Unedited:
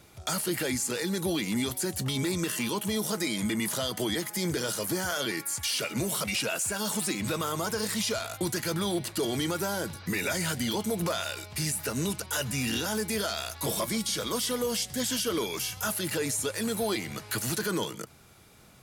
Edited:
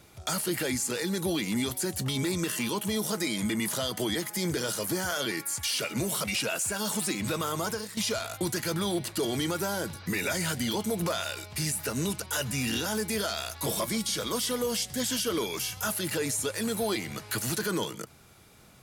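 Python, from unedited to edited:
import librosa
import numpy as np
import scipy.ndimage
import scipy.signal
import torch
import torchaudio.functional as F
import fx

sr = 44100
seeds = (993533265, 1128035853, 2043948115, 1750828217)

y = fx.edit(x, sr, fx.fade_out_to(start_s=7.71, length_s=0.26, curve='qua', floor_db=-12.5), tone=tone)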